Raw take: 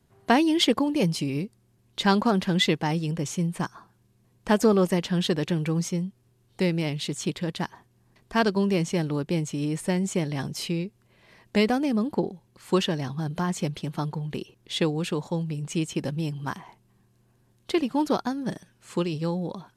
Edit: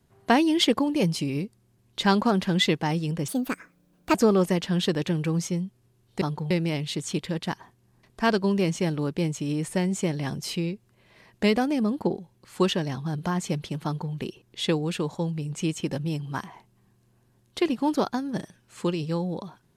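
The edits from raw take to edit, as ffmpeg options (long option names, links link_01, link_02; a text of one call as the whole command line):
ffmpeg -i in.wav -filter_complex "[0:a]asplit=5[link_01][link_02][link_03][link_04][link_05];[link_01]atrim=end=3.284[link_06];[link_02]atrim=start=3.28:end=4.56,asetpts=PTS-STARTPTS,asetrate=65268,aresample=44100[link_07];[link_03]atrim=start=4.556:end=6.632[link_08];[link_04]atrim=start=13.968:end=14.262[link_09];[link_05]atrim=start=6.628[link_10];[link_06][link_07]acrossfade=duration=0.004:curve1=hsin:curve2=hsin[link_11];[link_11][link_08]acrossfade=duration=0.004:curve1=hsin:curve2=hsin[link_12];[link_12][link_09]acrossfade=duration=0.004:curve1=hsin:curve2=hsin[link_13];[link_13][link_10]acrossfade=duration=0.004:curve1=hsin:curve2=hsin" out.wav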